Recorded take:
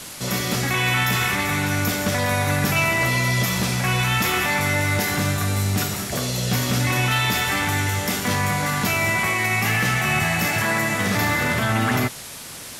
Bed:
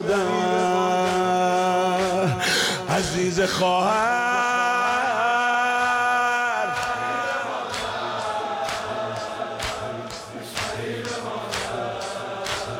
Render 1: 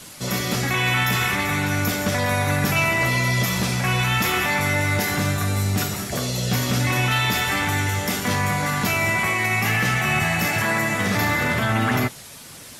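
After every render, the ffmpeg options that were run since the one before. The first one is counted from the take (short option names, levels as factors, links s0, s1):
-af "afftdn=nr=6:nf=-37"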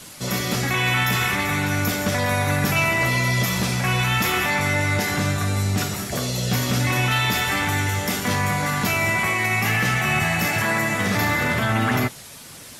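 -filter_complex "[0:a]asettb=1/sr,asplit=3[s0][s1][s2];[s0]atrim=end=4.504[s3];[s1]atrim=start=4.5:end=5.94,asetpts=PTS-STARTPTS,afade=t=in:d=0.004:c=qsin,afade=t=out:st=1.436:d=0.004:c=qsin,lowpass=11000[s4];[s2]atrim=start=5.936[s5];[s3][s4]acrossfade=d=0.004:c1=hsin:c2=qsin[s6];[s6][s5]acrossfade=d=0.004:c1=qsin:c2=hsin"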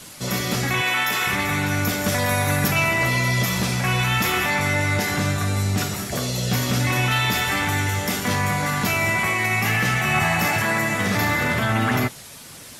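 -filter_complex "[0:a]asettb=1/sr,asplit=3[s0][s1][s2];[s0]atrim=end=0.814[s3];[s1]atrim=start=0.81:end=1.27,asetpts=PTS-STARTPTS,afade=t=in:d=0.004:c=qsin,afade=t=out:st=0.456:d=0.004:c=qsin,highpass=330[s4];[s2]atrim=start=1.266[s5];[s3][s4]acrossfade=d=0.004:c1=hsin:c2=qsin[s6];[s6][s5]acrossfade=d=0.004:c1=qsin:c2=hsin,asettb=1/sr,asplit=3[s7][s8][s9];[s7]atrim=end=2.044[s10];[s8]atrim=start=2.04:end=2.68,asetpts=PTS-STARTPTS,afade=t=in:d=0.004:c=qsin,afade=t=out:st=0.636:d=0.004:c=qsin,highshelf=f=8500:g=8.5[s11];[s9]atrim=start=2.676[s12];[s10][s11]acrossfade=d=0.004:c1=hsin:c2=qsin[s13];[s13][s12]acrossfade=d=0.004:c1=qsin:c2=hsin,asettb=1/sr,asplit=3[s14][s15][s16];[s14]atrim=end=10.144[s17];[s15]atrim=start=10.14:end=10.57,asetpts=PTS-STARTPTS,afade=t=in:d=0.004:c=qsin,afade=t=out:st=0.426:d=0.004:c=qsin,equalizer=f=960:w=1.5:g=5.5[s18];[s16]atrim=start=10.566[s19];[s17][s18]acrossfade=d=0.004:c1=hsin:c2=qsin[s20];[s20][s19]acrossfade=d=0.004:c1=qsin:c2=hsin"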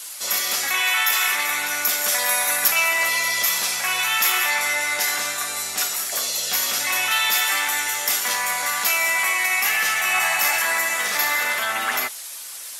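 -af "highpass=790,highshelf=f=5300:g=10.5"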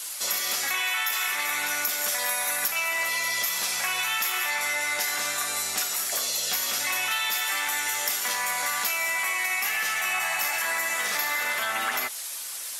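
-af "acompressor=threshold=0.0631:ratio=6"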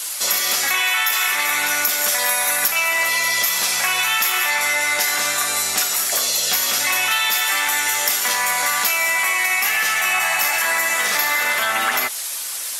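-af "volume=2.51"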